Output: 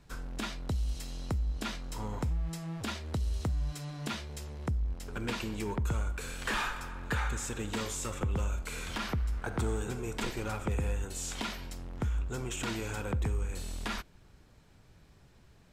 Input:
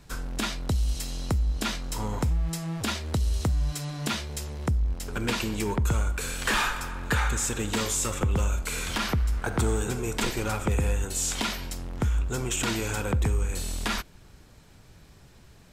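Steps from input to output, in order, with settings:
high-shelf EQ 4,900 Hz −6 dB
level −6.5 dB

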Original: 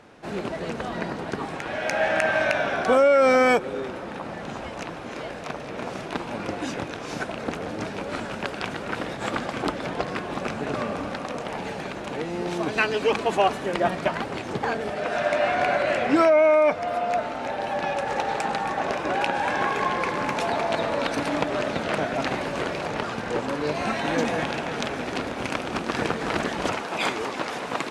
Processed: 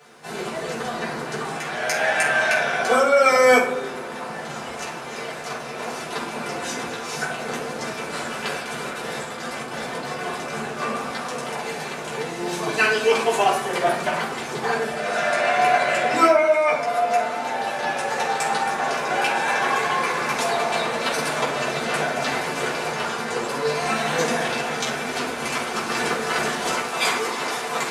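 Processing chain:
RIAA equalisation recording
0:08.46–0:10.78: compressor whose output falls as the input rises −34 dBFS, ratio −1
convolution reverb RT60 0.75 s, pre-delay 3 ms, DRR −10.5 dB
level −8 dB

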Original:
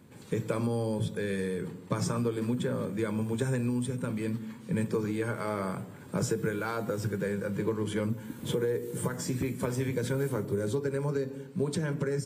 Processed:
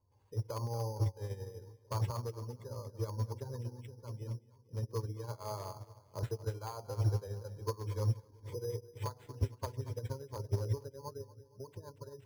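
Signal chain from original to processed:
gate on every frequency bin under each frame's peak −25 dB strong
drawn EQ curve 100 Hz 0 dB, 170 Hz −29 dB, 1,000 Hz −3 dB, 1,500 Hz −24 dB, 4,700 Hz −17 dB
hard clipping −35 dBFS, distortion −21 dB
echo with a time of its own for lows and highs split 460 Hz, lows 672 ms, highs 233 ms, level −10 dB
bad sample-rate conversion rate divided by 8×, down none, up hold
expander for the loud parts 2.5 to 1, over −50 dBFS
level +11 dB

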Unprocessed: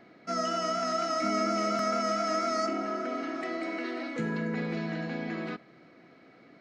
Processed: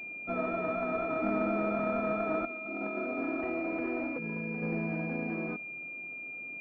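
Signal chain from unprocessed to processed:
0:02.45–0:04.63: compressor whose output falls as the input rises −34 dBFS, ratio −0.5
switching amplifier with a slow clock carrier 2,400 Hz

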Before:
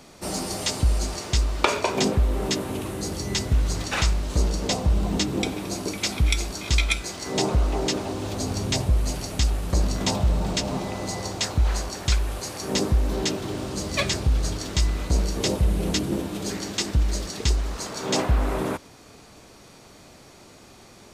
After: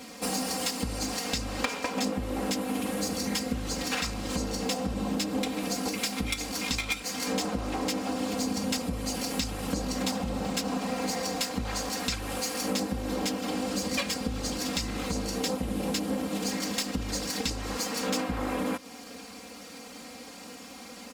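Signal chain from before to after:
lower of the sound and its delayed copy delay 4.2 ms
high-pass filter 110 Hz 12 dB per octave
downward compressor 5 to 1, threshold −34 dBFS, peak gain reduction 16.5 dB
comb filter 3.8 ms, depth 66%
level +4.5 dB

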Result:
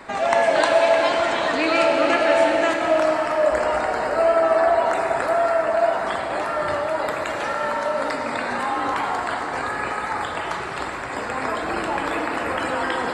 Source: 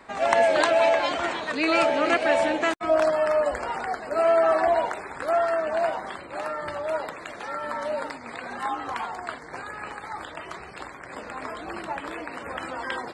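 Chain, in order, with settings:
in parallel at −3 dB: compressor whose output falls as the input rises −34 dBFS, ratio −1
on the sum: convolution reverb RT60 4.2 s, pre-delay 5 ms, DRR 0.5 dB

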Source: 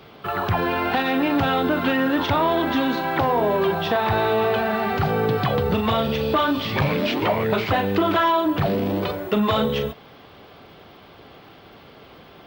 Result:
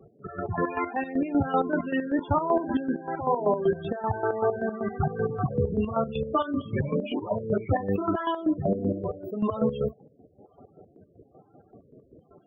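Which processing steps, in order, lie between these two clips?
rotating-speaker cabinet horn 1.1 Hz
spectral peaks only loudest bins 16
square-wave tremolo 5.2 Hz, depth 65%, duty 40%

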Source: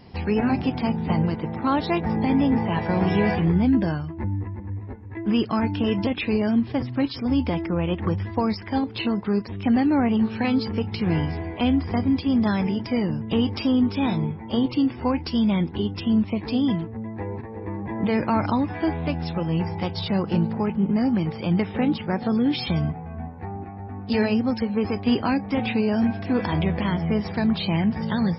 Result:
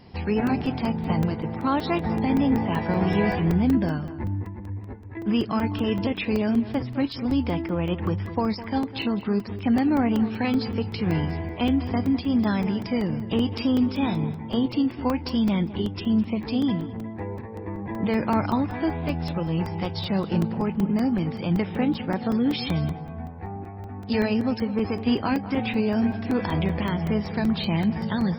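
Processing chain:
feedback echo with a low-pass in the loop 206 ms, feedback 24%, low-pass 2,800 Hz, level −14 dB
regular buffer underruns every 0.19 s, samples 128, zero, from 0:00.47
level −1.5 dB

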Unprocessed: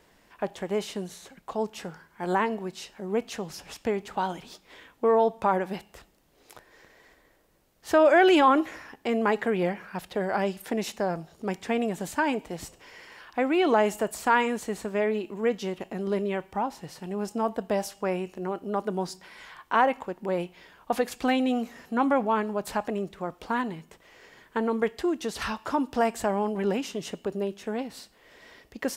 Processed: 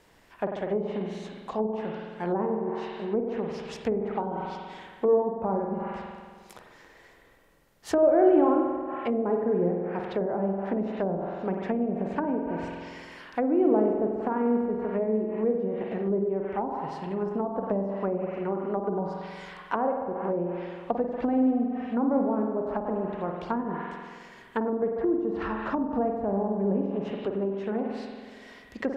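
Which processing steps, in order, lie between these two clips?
spring reverb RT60 1.7 s, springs 46 ms, chirp 45 ms, DRR 1.5 dB
treble cut that deepens with the level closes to 540 Hz, closed at −22.5 dBFS

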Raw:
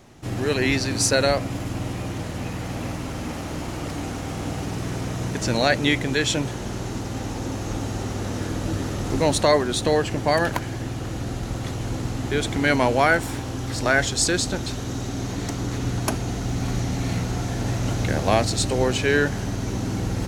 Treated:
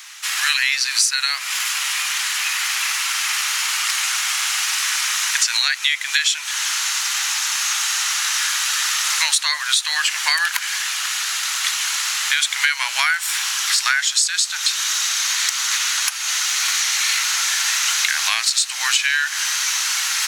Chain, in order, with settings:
Bessel high-pass filter 2,100 Hz, order 8
downward compressor 16 to 1, threshold −36 dBFS, peak gain reduction 19 dB
boost into a limiter +22.5 dB
level −1 dB

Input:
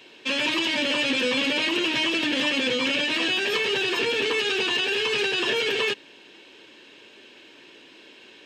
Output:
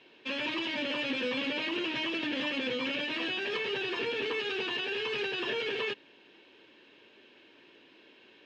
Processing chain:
high-frequency loss of the air 170 metres
level −7 dB

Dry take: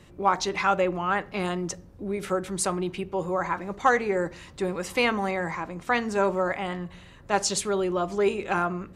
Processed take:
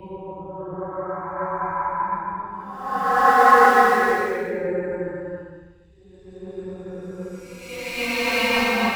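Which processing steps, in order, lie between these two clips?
spectral dynamics exaggerated over time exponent 1.5
in parallel at −11 dB: wrap-around overflow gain 16.5 dB
on the sum: dynamic equaliser 980 Hz, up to +7 dB, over −40 dBFS, Q 1.5
extreme stretch with random phases 4.3×, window 0.50 s, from 0:03.06
multiband upward and downward expander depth 70%
level +1 dB

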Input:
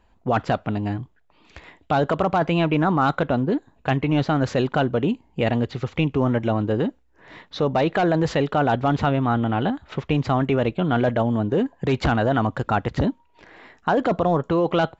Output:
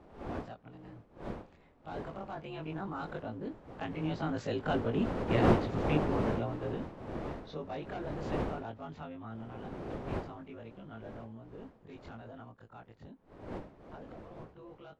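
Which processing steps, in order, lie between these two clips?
every overlapping window played backwards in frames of 52 ms
wind on the microphone 520 Hz −24 dBFS
source passing by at 0:05.31, 6 m/s, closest 4.2 metres
level −6 dB

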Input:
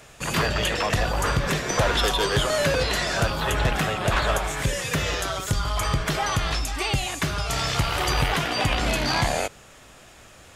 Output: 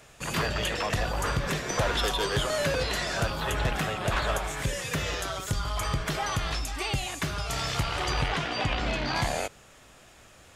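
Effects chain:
0:07.83–0:09.14: low-pass filter 8,800 Hz → 4,100 Hz 12 dB per octave
level −5 dB

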